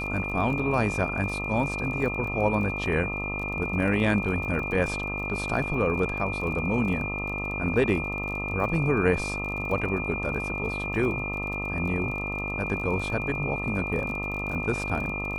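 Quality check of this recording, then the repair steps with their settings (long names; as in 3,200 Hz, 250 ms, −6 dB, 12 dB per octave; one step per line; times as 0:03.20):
mains buzz 50 Hz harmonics 26 −34 dBFS
surface crackle 28 per second −34 dBFS
whistle 2,400 Hz −31 dBFS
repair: click removal
hum removal 50 Hz, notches 26
notch filter 2,400 Hz, Q 30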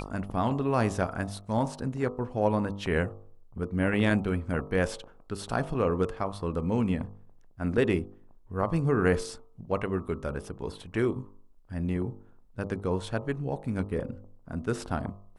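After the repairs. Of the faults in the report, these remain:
none of them is left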